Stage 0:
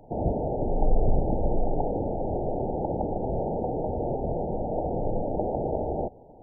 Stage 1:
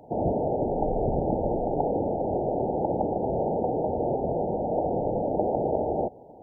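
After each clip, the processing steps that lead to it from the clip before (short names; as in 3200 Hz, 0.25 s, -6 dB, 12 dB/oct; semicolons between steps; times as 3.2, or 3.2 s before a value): HPF 180 Hz 6 dB/oct; gain +3.5 dB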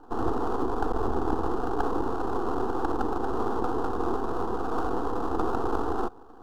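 half-wave rectifier; fixed phaser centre 590 Hz, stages 6; gain +5.5 dB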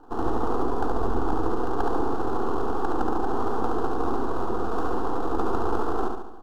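feedback echo 71 ms, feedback 51%, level -4 dB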